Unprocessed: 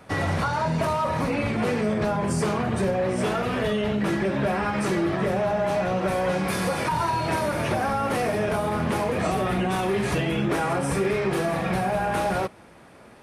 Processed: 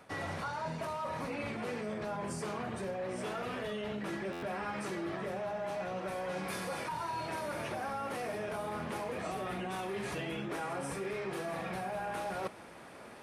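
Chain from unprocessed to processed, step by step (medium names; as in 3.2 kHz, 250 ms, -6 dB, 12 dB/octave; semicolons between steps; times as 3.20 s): bass shelf 190 Hz -9 dB; reverse; compression 6:1, threshold -36 dBFS, peak gain reduction 13.5 dB; reverse; buffer glitch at 4.32 s, samples 512, times 8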